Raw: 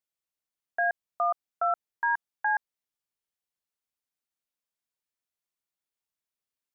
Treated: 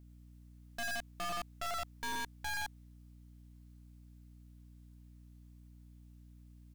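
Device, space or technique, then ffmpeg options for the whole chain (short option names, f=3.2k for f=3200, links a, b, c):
valve amplifier with mains hum: -af "aecho=1:1:46.65|93.29:0.447|0.708,aeval=exprs='(tanh(355*val(0)+0.65)-tanh(0.65))/355':c=same,aeval=exprs='val(0)+0.000398*(sin(2*PI*60*n/s)+sin(2*PI*2*60*n/s)/2+sin(2*PI*3*60*n/s)/3+sin(2*PI*4*60*n/s)/4+sin(2*PI*5*60*n/s)/5)':c=same,volume=13dB"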